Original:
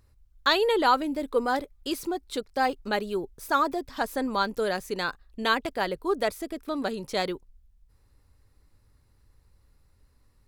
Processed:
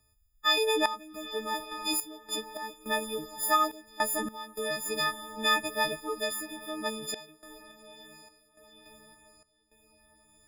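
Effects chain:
every partial snapped to a pitch grid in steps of 6 semitones
feedback delay with all-pass diffusion 846 ms, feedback 43%, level −13.5 dB
sample-and-hold tremolo 3.5 Hz, depth 90%
level −4.5 dB

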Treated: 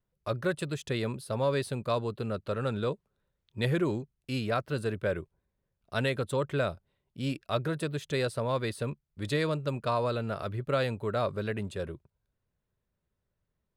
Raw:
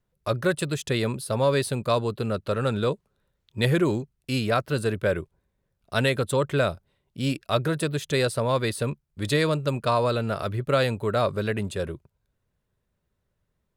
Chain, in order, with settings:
high-shelf EQ 5,700 Hz −6.5 dB
level −6 dB

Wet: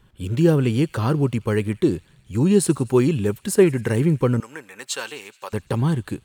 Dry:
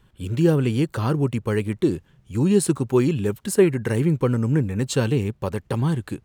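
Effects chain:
0:04.40–0:05.53: high-pass filter 970 Hz 12 dB per octave
delay with a high-pass on its return 85 ms, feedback 77%, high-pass 2,500 Hz, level −21 dB
level +1.5 dB

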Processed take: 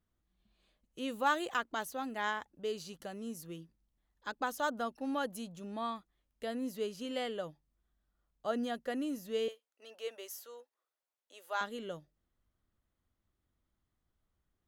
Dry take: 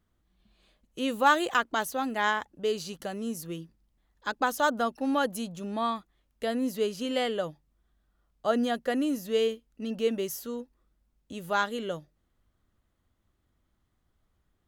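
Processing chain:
0:09.48–0:11.61: high-pass filter 510 Hz 24 dB per octave
level −8.5 dB

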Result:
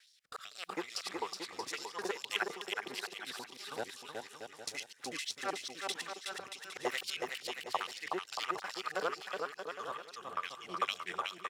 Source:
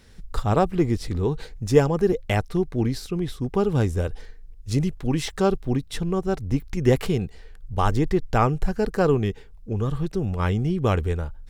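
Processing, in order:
reversed piece by piece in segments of 64 ms
gain into a clipping stage and back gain 12 dB
auto-filter high-pass sine 2.3 Hz 780–4,700 Hz
rotating-speaker cabinet horn 0.8 Hz
on a send: bouncing-ball delay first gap 370 ms, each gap 0.7×, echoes 5
on the sum: level −4 dB

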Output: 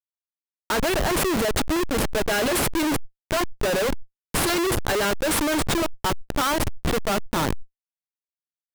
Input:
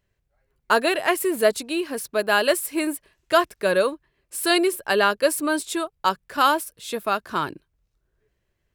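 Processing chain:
comparator with hysteresis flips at −27.5 dBFS
level that may fall only so fast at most 29 dB per second
level +2 dB

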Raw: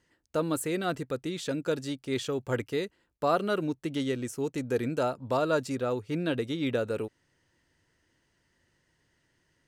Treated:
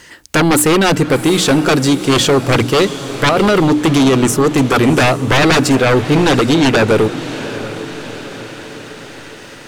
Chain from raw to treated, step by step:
mains-hum notches 60/120/180/240/300 Hz
0:03.29–0:04.28: compressor whose output falls as the input rises −30 dBFS, ratio −1
sine wavefolder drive 14 dB, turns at −14 dBFS
feedback delay with all-pass diffusion 725 ms, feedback 52%, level −13 dB
one half of a high-frequency compander encoder only
level +6.5 dB

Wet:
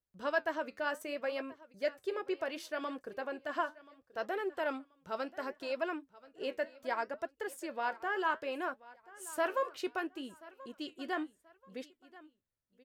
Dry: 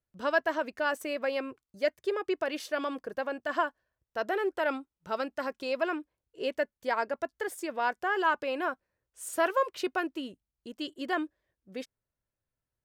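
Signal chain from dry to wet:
repeating echo 1,032 ms, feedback 30%, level −20 dB
flanger 0.68 Hz, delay 3.5 ms, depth 8.6 ms, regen −70%
level −1.5 dB

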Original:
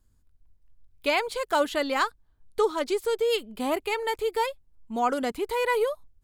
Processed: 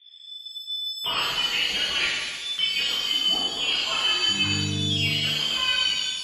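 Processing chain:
low-pass that shuts in the quiet parts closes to 1,800 Hz, open at −23.5 dBFS
voice inversion scrambler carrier 3,500 Hz
downward compressor 16 to 1, threshold −37 dBFS, peak gain reduction 19.5 dB
0:04.28–0:04.93: hum with harmonics 100 Hz, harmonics 4, −45 dBFS −9 dB per octave
reverb with rising layers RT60 1.5 s, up +7 semitones, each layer −8 dB, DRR −8 dB
level +7 dB

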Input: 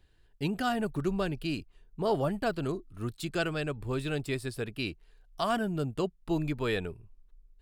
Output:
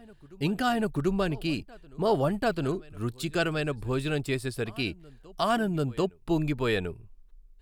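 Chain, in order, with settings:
backwards echo 740 ms −23.5 dB
level +3.5 dB

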